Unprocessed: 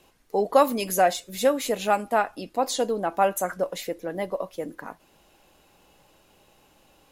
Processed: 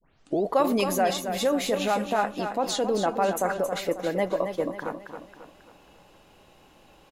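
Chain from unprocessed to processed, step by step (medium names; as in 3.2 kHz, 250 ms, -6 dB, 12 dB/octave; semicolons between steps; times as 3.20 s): tape start-up on the opening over 0.44 s; in parallel at +1 dB: compressor with a negative ratio -26 dBFS, ratio -0.5; on the sum: treble shelf 6.4 kHz -10.5 dB; feedback delay 271 ms, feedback 42%, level -8 dB; trim -5 dB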